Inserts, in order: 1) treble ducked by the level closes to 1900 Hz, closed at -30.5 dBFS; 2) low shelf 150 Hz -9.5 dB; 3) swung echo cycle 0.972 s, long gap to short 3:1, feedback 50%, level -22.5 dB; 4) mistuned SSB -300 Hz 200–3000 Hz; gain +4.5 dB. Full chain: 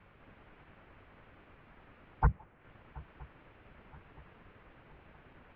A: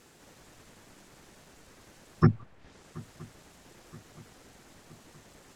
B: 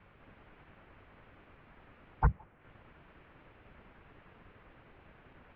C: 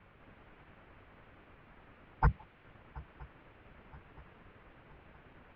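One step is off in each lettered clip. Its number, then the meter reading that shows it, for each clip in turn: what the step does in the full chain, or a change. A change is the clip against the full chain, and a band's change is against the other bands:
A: 4, 1 kHz band -10.0 dB; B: 3, momentary loudness spread change -12 LU; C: 1, 2 kHz band +2.0 dB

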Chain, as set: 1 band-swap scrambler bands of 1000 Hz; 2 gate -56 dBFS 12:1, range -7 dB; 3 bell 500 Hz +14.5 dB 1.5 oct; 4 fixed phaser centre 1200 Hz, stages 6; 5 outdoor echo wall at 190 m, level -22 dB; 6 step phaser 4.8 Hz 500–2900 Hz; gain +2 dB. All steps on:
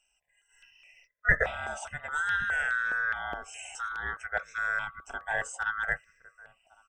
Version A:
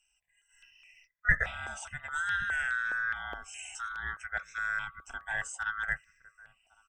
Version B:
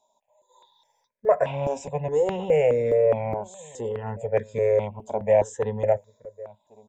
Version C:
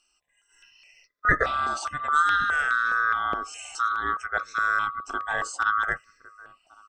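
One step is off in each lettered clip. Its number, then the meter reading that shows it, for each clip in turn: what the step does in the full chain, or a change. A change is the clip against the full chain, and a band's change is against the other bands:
3, 500 Hz band -10.5 dB; 1, 2 kHz band -30.0 dB; 4, 1 kHz band +8.0 dB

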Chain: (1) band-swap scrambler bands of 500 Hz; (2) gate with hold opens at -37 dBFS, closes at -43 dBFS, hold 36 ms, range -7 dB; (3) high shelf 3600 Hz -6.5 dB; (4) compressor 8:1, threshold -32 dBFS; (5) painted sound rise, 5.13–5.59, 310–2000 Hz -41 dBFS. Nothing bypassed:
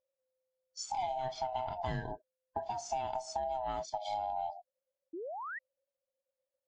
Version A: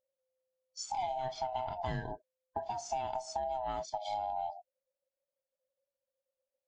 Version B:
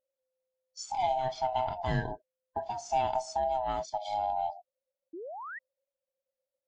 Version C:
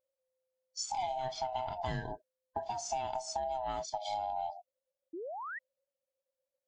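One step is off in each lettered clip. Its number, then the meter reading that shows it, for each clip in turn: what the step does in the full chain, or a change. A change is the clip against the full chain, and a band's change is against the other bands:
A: 5, 2 kHz band -3.5 dB; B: 4, mean gain reduction 4.0 dB; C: 3, 8 kHz band +4.5 dB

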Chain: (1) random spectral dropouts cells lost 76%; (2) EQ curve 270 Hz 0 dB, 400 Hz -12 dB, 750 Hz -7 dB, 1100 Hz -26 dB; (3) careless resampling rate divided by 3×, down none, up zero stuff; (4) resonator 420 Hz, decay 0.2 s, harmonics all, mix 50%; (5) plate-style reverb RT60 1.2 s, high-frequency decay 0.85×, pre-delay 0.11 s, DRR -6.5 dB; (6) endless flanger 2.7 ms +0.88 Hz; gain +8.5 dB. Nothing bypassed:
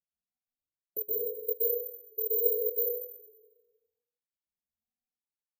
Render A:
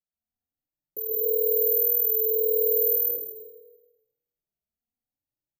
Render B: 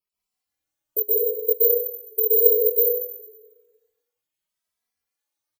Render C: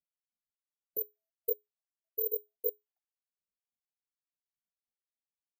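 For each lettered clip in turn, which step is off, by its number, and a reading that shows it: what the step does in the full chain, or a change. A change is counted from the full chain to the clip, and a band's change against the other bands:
1, crest factor change -8.0 dB; 2, loudness change +11.0 LU; 5, momentary loudness spread change -5 LU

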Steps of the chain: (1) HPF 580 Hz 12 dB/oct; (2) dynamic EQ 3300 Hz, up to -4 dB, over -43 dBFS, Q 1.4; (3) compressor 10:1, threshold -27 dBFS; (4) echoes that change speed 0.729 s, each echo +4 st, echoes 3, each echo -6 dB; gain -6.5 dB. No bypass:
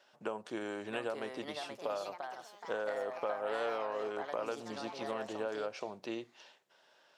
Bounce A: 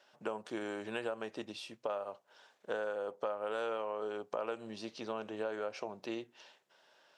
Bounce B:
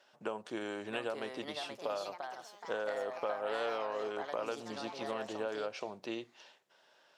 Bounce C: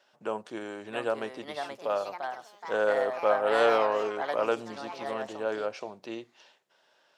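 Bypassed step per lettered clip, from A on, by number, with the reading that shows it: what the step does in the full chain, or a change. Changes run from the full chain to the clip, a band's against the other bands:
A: 4, 1 kHz band -1.5 dB; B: 2, 4 kHz band +2.5 dB; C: 3, mean gain reduction 5.0 dB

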